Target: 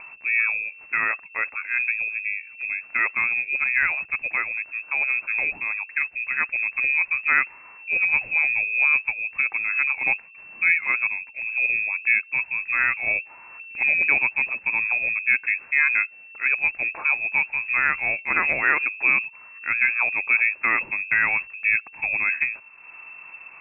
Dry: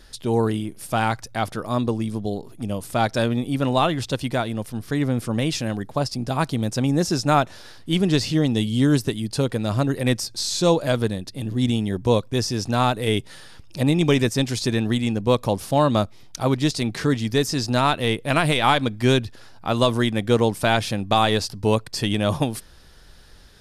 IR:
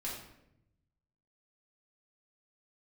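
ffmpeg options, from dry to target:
-af "acompressor=mode=upward:threshold=0.0316:ratio=2.5,lowpass=f=2300:t=q:w=0.5098,lowpass=f=2300:t=q:w=0.6013,lowpass=f=2300:t=q:w=0.9,lowpass=f=2300:t=q:w=2.563,afreqshift=-2700,volume=0.794"

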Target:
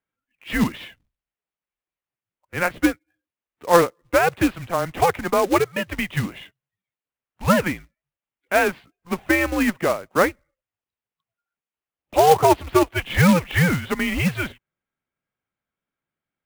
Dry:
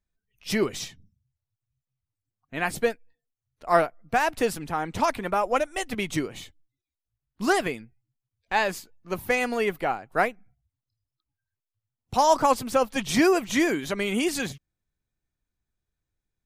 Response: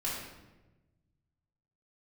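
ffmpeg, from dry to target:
-af "highpass=f=280:t=q:w=0.5412,highpass=f=280:t=q:w=1.307,lowpass=f=3200:t=q:w=0.5176,lowpass=f=3200:t=q:w=0.7071,lowpass=f=3200:t=q:w=1.932,afreqshift=-170,acrusher=bits=3:mode=log:mix=0:aa=0.000001,volume=1.88"

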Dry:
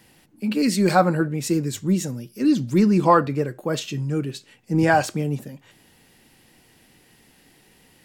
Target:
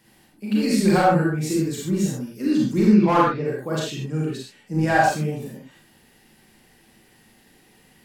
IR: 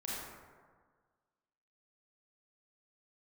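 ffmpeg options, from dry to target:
-filter_complex "[0:a]asplit=3[s0][s1][s2];[s0]afade=t=out:st=2.87:d=0.02[s3];[s1]lowpass=f=4800:w=0.5412,lowpass=f=4800:w=1.3066,afade=t=in:st=2.87:d=0.02,afade=t=out:st=3.43:d=0.02[s4];[s2]afade=t=in:st=3.43:d=0.02[s5];[s3][s4][s5]amix=inputs=3:normalize=0,asoftclip=type=hard:threshold=0.316[s6];[1:a]atrim=start_sample=2205,afade=t=out:st=0.19:d=0.01,atrim=end_sample=8820[s7];[s6][s7]afir=irnorm=-1:irlink=0"

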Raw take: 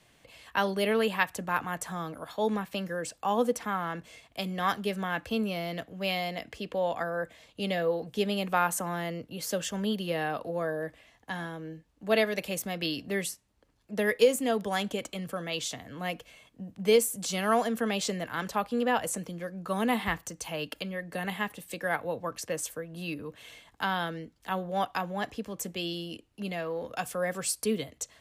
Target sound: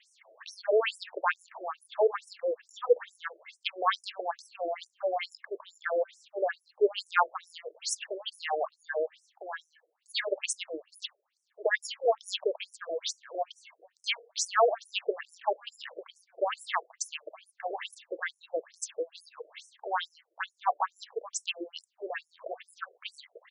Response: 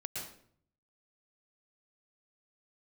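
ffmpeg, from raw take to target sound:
-af "atempo=1.2,afftfilt=real='re*between(b*sr/1024,470*pow(7700/470,0.5+0.5*sin(2*PI*2.3*pts/sr))/1.41,470*pow(7700/470,0.5+0.5*sin(2*PI*2.3*pts/sr))*1.41)':imag='im*between(b*sr/1024,470*pow(7700/470,0.5+0.5*sin(2*PI*2.3*pts/sr))/1.41,470*pow(7700/470,0.5+0.5*sin(2*PI*2.3*pts/sr))*1.41)':win_size=1024:overlap=0.75,volume=2.11"

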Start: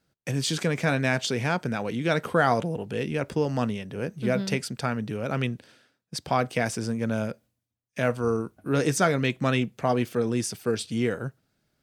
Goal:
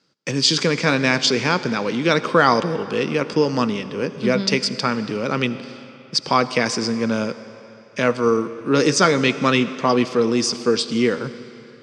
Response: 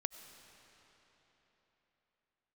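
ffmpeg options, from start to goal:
-filter_complex "[0:a]highpass=210,equalizer=f=700:t=q:w=4:g=-10,equalizer=f=1100:t=q:w=4:g=4,equalizer=f=1600:t=q:w=4:g=-4,equalizer=f=4900:t=q:w=4:g=8,lowpass=f=7000:w=0.5412,lowpass=f=7000:w=1.3066,asplit=2[s0][s1];[1:a]atrim=start_sample=2205,asetrate=57330,aresample=44100[s2];[s1][s2]afir=irnorm=-1:irlink=0,volume=2.11[s3];[s0][s3]amix=inputs=2:normalize=0,volume=1.19"

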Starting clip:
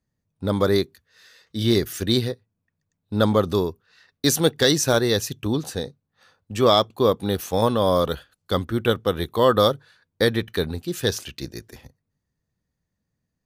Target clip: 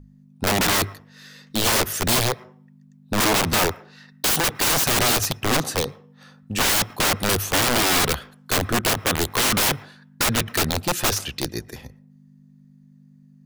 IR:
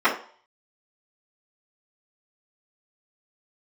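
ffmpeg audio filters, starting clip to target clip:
-filter_complex "[0:a]aeval=exprs='val(0)+0.00398*(sin(2*PI*50*n/s)+sin(2*PI*2*50*n/s)/2+sin(2*PI*3*50*n/s)/3+sin(2*PI*4*50*n/s)/4+sin(2*PI*5*50*n/s)/5)':c=same,bandreject=f=50:t=h:w=6,bandreject=f=100:t=h:w=6,aeval=exprs='(mod(10.6*val(0)+1,2)-1)/10.6':c=same,asplit=2[s0][s1];[1:a]atrim=start_sample=2205,adelay=107[s2];[s1][s2]afir=irnorm=-1:irlink=0,volume=0.00944[s3];[s0][s3]amix=inputs=2:normalize=0,volume=2"

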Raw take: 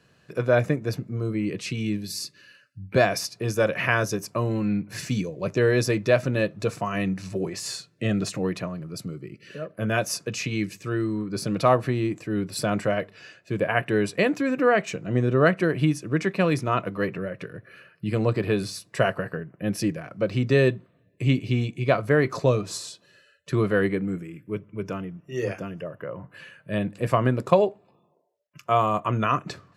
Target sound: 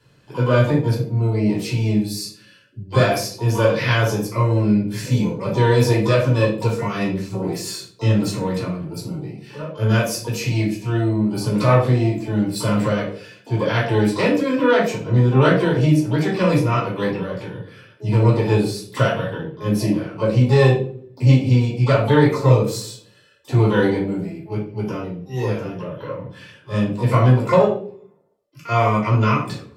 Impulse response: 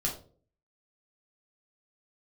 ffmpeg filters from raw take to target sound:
-filter_complex "[0:a]asplit=2[s0][s1];[s1]asetrate=88200,aresample=44100,atempo=0.5,volume=0.316[s2];[s0][s2]amix=inputs=2:normalize=0[s3];[1:a]atrim=start_sample=2205,asetrate=33075,aresample=44100[s4];[s3][s4]afir=irnorm=-1:irlink=0,volume=0.631"

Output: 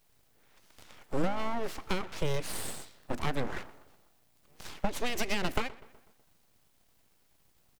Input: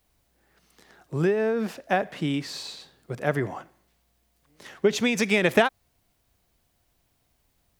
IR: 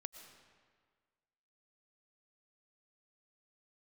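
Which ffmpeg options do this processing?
-filter_complex "[0:a]acrossover=split=150[s0][s1];[s1]acompressor=threshold=0.0316:ratio=8[s2];[s0][s2]amix=inputs=2:normalize=0,asplit=2[s3][s4];[s4]adelay=124,lowpass=f=2600:p=1,volume=0.112,asplit=2[s5][s6];[s6]adelay=124,lowpass=f=2600:p=1,volume=0.55,asplit=2[s7][s8];[s8]adelay=124,lowpass=f=2600:p=1,volume=0.55,asplit=2[s9][s10];[s10]adelay=124,lowpass=f=2600:p=1,volume=0.55,asplit=2[s11][s12];[s12]adelay=124,lowpass=f=2600:p=1,volume=0.55[s13];[s3][s5][s7][s9][s11][s13]amix=inputs=6:normalize=0,aeval=exprs='abs(val(0))':c=same,volume=1.41"

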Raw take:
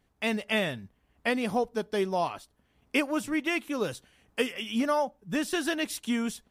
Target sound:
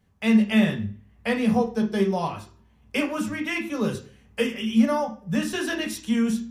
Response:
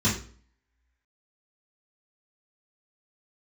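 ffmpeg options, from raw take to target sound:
-filter_complex "[0:a]asplit=2[s0][s1];[1:a]atrim=start_sample=2205,lowpass=6400[s2];[s1][s2]afir=irnorm=-1:irlink=0,volume=0.2[s3];[s0][s3]amix=inputs=2:normalize=0"

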